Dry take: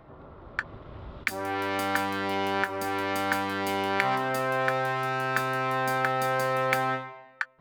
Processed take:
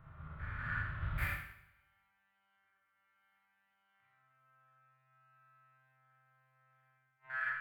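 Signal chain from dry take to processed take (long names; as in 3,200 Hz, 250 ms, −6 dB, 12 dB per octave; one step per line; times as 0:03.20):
spectrum averaged block by block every 200 ms
drawn EQ curve 150 Hz 0 dB, 240 Hz −18 dB, 390 Hz −22 dB, 870 Hz −14 dB, 1,400 Hz 0 dB, 2,800 Hz −5 dB, 6,100 Hz −22 dB, 12,000 Hz −4 dB
gate with flip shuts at −31 dBFS, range −40 dB
four-comb reverb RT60 1.1 s, combs from 26 ms, DRR −4 dB
expander for the loud parts 1.5 to 1, over −58 dBFS
level +4.5 dB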